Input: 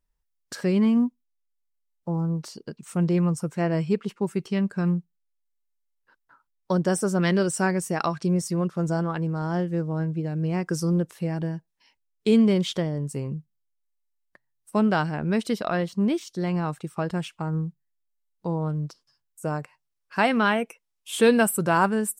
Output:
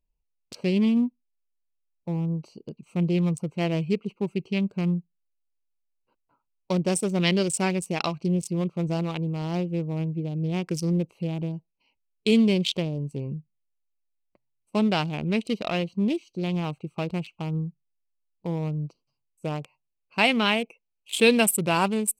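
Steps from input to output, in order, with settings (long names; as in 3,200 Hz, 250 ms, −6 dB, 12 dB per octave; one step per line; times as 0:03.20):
adaptive Wiener filter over 25 samples
high shelf with overshoot 2,000 Hz +6.5 dB, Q 3
level −1 dB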